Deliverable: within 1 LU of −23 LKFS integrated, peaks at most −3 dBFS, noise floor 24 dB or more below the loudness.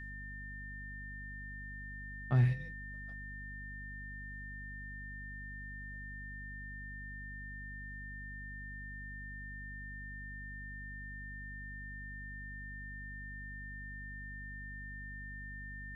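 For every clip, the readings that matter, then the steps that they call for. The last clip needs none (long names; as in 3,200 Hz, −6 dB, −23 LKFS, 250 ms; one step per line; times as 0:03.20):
mains hum 50 Hz; hum harmonics up to 250 Hz; level of the hum −45 dBFS; interfering tone 1,800 Hz; level of the tone −46 dBFS; integrated loudness −43.0 LKFS; sample peak −19.5 dBFS; target loudness −23.0 LKFS
→ hum removal 50 Hz, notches 5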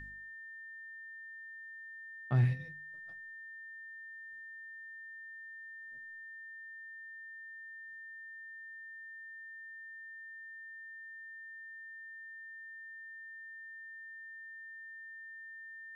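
mains hum none found; interfering tone 1,800 Hz; level of the tone −46 dBFS
→ notch filter 1,800 Hz, Q 30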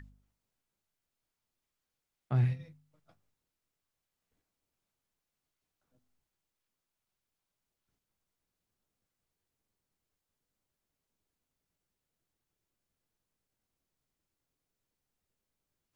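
interfering tone none found; integrated loudness −32.5 LKFS; sample peak −20.0 dBFS; target loudness −23.0 LKFS
→ level +9.5 dB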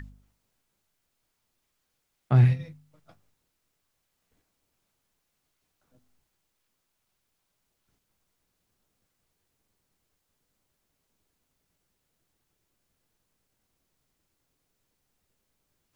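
integrated loudness −23.0 LKFS; sample peak −10.5 dBFS; background noise floor −79 dBFS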